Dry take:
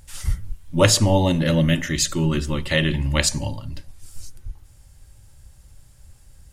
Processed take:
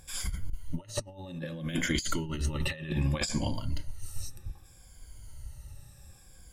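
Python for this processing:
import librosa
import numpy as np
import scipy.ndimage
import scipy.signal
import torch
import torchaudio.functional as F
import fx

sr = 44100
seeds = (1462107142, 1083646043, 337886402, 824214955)

y = fx.spec_ripple(x, sr, per_octave=1.8, drift_hz=-0.64, depth_db=14)
y = fx.high_shelf(y, sr, hz=fx.line((3.0, 11000.0), (3.54, 7100.0)), db=-7.0, at=(3.0, 3.54), fade=0.02)
y = fx.over_compress(y, sr, threshold_db=-23.0, ratio=-0.5)
y = y * 10.0 ** (-7.5 / 20.0)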